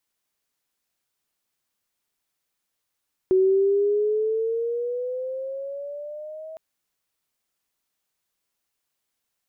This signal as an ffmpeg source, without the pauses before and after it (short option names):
-f lavfi -i "aevalsrc='pow(10,(-14.5-20.5*t/3.26)/20)*sin(2*PI*372*3.26/(9.5*log(2)/12)*(exp(9.5*log(2)/12*t/3.26)-1))':d=3.26:s=44100"